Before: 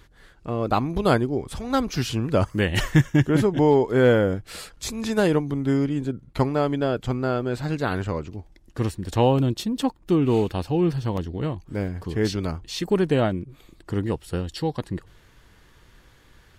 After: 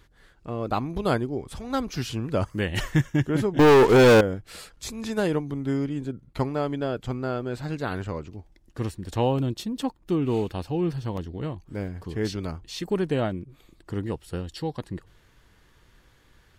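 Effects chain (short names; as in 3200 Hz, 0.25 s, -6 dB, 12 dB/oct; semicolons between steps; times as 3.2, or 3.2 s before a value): 3.59–4.21 sample leveller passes 5; gain -4.5 dB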